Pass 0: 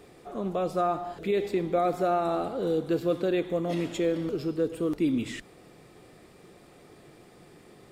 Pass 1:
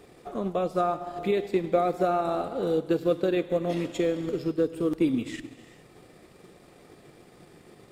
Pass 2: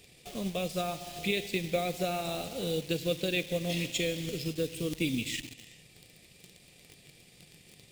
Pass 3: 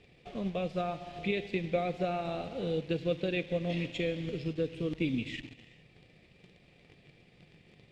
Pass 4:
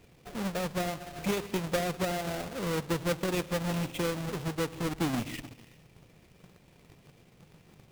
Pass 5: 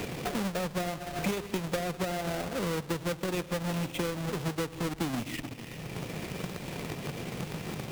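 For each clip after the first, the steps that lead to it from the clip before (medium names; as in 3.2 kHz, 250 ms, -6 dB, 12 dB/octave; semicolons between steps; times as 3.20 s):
gated-style reverb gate 450 ms flat, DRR 11.5 dB; transient shaper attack +4 dB, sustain -5 dB
in parallel at -6 dB: bit crusher 7-bit; on the sum: FFT filter 160 Hz 0 dB, 350 Hz -11 dB, 520 Hz -7 dB, 1.3 kHz -14 dB, 2.5 kHz +8 dB; trim -3 dB
low-pass 2.3 kHz 12 dB/octave
square wave that keeps the level; trim -3 dB
three bands compressed up and down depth 100%; trim -1 dB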